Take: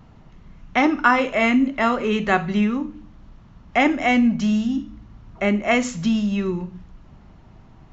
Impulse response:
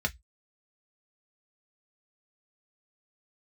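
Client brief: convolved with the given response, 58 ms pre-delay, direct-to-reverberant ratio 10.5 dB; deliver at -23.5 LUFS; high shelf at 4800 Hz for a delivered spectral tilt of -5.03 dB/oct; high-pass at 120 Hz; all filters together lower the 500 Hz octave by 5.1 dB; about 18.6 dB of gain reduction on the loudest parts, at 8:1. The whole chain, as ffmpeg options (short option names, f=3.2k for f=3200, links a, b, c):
-filter_complex "[0:a]highpass=120,equalizer=f=500:t=o:g=-7,highshelf=f=4.8k:g=4,acompressor=threshold=-31dB:ratio=8,asplit=2[a][b];[1:a]atrim=start_sample=2205,adelay=58[c];[b][c]afir=irnorm=-1:irlink=0,volume=-17.5dB[d];[a][d]amix=inputs=2:normalize=0,volume=10.5dB"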